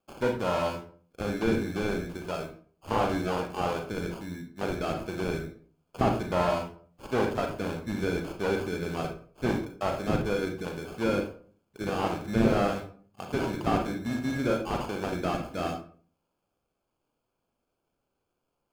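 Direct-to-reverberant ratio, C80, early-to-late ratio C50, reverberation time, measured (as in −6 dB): 2.5 dB, 12.0 dB, 7.0 dB, 0.45 s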